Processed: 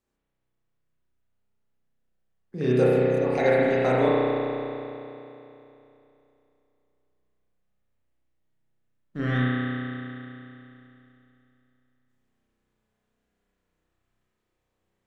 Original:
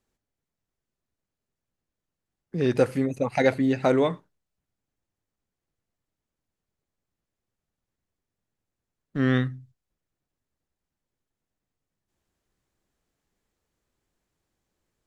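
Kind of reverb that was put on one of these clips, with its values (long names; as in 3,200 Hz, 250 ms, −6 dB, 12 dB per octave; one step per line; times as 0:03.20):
spring reverb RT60 3 s, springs 32 ms, chirp 50 ms, DRR −7.5 dB
level −5.5 dB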